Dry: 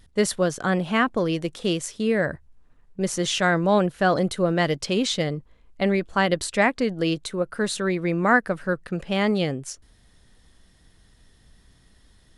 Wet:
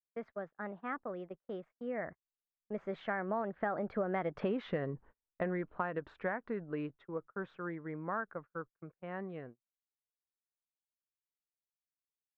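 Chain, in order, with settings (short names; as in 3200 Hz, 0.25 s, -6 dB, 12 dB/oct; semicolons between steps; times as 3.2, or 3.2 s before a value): Doppler pass-by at 4.54, 33 m/s, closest 8.3 m; gate -51 dBFS, range -35 dB; LPF 1600 Hz 24 dB/oct; tilt +2.5 dB/oct; compressor 10:1, threshold -40 dBFS, peak gain reduction 17 dB; gain +8.5 dB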